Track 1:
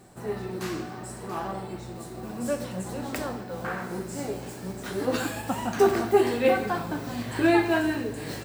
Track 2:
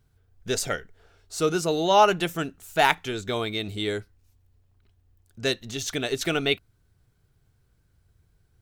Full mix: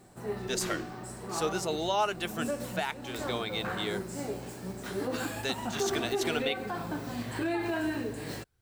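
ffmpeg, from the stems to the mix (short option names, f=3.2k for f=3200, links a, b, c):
-filter_complex "[0:a]alimiter=limit=-19.5dB:level=0:latency=1:release=78,volume=-3.5dB[a];[1:a]lowshelf=f=370:g=-8.5,volume=-4dB[b];[a][b]amix=inputs=2:normalize=0,alimiter=limit=-18.5dB:level=0:latency=1:release=345"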